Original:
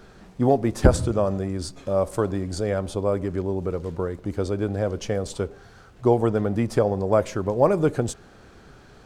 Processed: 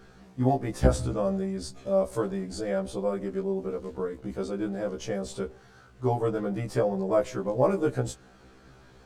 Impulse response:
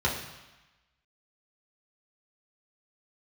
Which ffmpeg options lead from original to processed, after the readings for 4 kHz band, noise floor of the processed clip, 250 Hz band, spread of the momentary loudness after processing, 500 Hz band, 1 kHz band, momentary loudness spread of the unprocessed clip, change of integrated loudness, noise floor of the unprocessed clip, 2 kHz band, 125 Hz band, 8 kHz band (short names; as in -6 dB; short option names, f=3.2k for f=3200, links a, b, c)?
-4.5 dB, -55 dBFS, -5.0 dB, 10 LU, -4.5 dB, -4.5 dB, 10 LU, -5.0 dB, -50 dBFS, -5.0 dB, -5.5 dB, -5.0 dB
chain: -af "afftfilt=real='re*1.73*eq(mod(b,3),0)':imag='im*1.73*eq(mod(b,3),0)':win_size=2048:overlap=0.75,volume=-2.5dB"